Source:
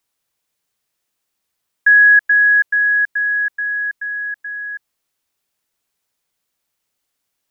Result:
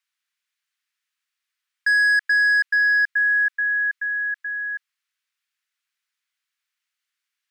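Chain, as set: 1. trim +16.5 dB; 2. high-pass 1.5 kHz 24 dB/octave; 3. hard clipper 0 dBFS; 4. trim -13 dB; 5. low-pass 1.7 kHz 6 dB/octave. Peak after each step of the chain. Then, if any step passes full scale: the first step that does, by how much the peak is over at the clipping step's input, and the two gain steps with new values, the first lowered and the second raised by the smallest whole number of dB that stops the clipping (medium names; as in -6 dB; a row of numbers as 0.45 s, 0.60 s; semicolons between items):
+11.0 dBFS, +9.5 dBFS, 0.0 dBFS, -13.0 dBFS, -14.0 dBFS; step 1, 9.5 dB; step 1 +6.5 dB, step 4 -3 dB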